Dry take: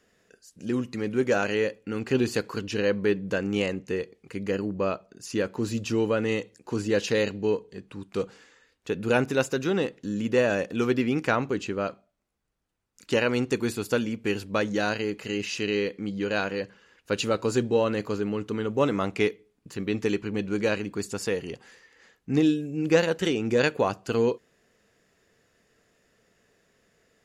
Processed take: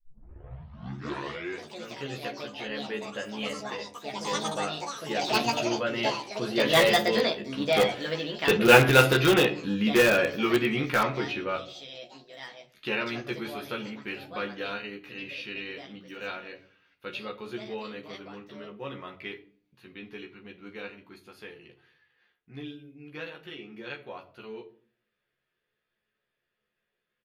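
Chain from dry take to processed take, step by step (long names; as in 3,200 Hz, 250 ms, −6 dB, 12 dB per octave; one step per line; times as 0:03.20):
turntable start at the beginning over 1.96 s
source passing by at 0:08.73, 17 m/s, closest 12 metres
drawn EQ curve 280 Hz 0 dB, 3,500 Hz +11 dB, 7,500 Hz −16 dB, 11,000 Hz +6 dB
convolution reverb RT60 0.45 s, pre-delay 6 ms, DRR 7 dB
delay with pitch and tempo change per echo 227 ms, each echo +5 semitones, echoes 3, each echo −6 dB
double-tracking delay 14 ms −2 dB
in parallel at −9 dB: wrap-around overflow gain 16 dB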